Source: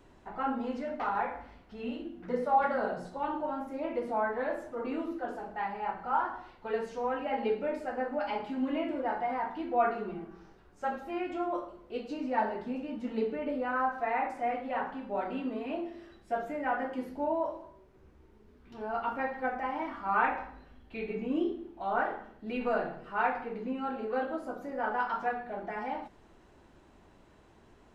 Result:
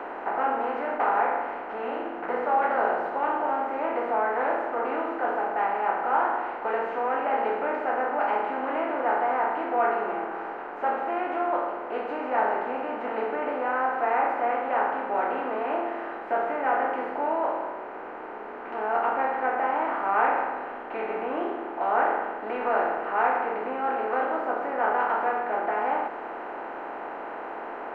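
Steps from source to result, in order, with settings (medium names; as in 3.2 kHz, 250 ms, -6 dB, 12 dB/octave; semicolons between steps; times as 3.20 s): spectral levelling over time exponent 0.4; three-band isolator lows -17 dB, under 360 Hz, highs -21 dB, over 2.6 kHz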